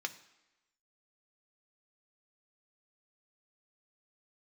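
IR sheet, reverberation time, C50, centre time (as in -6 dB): 1.0 s, 15.0 dB, 6 ms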